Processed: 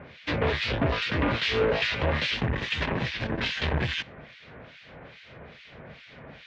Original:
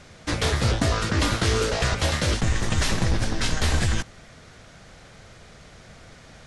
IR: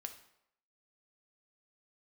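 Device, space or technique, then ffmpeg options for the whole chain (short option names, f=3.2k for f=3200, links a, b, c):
guitar amplifier with harmonic tremolo: -filter_complex "[0:a]acrossover=split=1800[a][b];[a]aeval=exprs='val(0)*(1-1/2+1/2*cos(2*PI*2.4*n/s))':c=same[c];[b]aeval=exprs='val(0)*(1-1/2-1/2*cos(2*PI*2.4*n/s))':c=same[d];[c][d]amix=inputs=2:normalize=0,asoftclip=type=tanh:threshold=-24.5dB,highpass=92,equalizer=f=100:t=q:w=4:g=-8,equalizer=f=190:t=q:w=4:g=-5,equalizer=f=330:t=q:w=4:g=-4,equalizer=f=750:t=q:w=4:g=-4,equalizer=f=1.3k:t=q:w=4:g=-6,equalizer=f=2.5k:t=q:w=4:g=3,lowpass=f=3.5k:w=0.5412,lowpass=f=3.5k:w=1.3066,volume=8.5dB"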